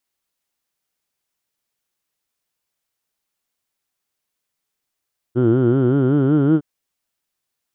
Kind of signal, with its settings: formant vowel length 1.26 s, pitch 117 Hz, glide +4.5 st, vibrato depth 1.25 st, F1 340 Hz, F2 1400 Hz, F3 3100 Hz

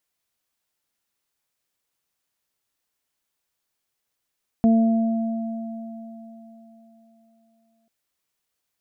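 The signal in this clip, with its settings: additive tone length 3.24 s, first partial 226 Hz, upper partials -17/-11 dB, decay 3.57 s, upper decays 1.08/4.22 s, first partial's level -12.5 dB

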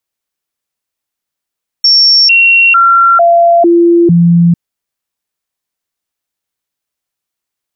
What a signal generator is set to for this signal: stepped sine 5470 Hz down, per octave 1, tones 6, 0.45 s, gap 0.00 s -3 dBFS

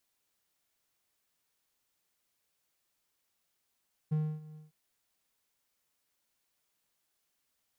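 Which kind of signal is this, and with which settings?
ADSR triangle 154 Hz, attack 16 ms, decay 0.274 s, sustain -20 dB, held 0.45 s, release 0.154 s -24 dBFS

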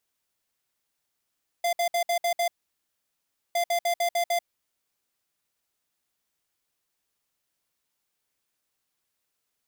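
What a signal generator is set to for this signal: beep pattern square 691 Hz, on 0.09 s, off 0.06 s, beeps 6, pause 1.07 s, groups 2, -24.5 dBFS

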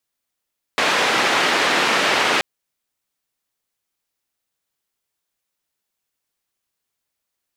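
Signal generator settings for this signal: noise band 280–2600 Hz, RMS -18 dBFS 1.63 s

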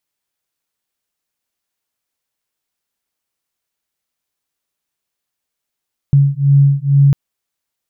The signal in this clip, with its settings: beating tones 139 Hz, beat 2.2 Hz, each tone -11 dBFS 1.00 s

